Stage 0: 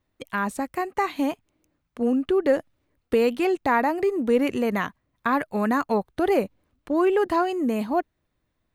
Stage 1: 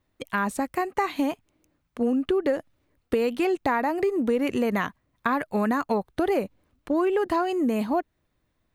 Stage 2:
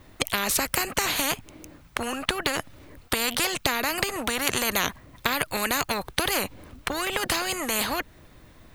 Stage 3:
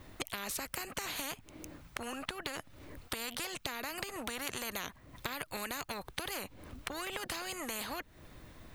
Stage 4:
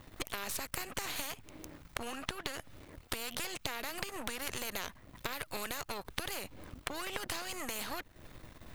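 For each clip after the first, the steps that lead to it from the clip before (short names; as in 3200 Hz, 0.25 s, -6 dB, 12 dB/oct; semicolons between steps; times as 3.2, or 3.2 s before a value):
compressor, threshold -22 dBFS, peak gain reduction 7.5 dB; gain +2 dB
spectral compressor 4:1; gain +8.5 dB
compressor 3:1, threshold -38 dBFS, peak gain reduction 14 dB; gain -2 dB
half-wave gain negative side -12 dB; gain +3.5 dB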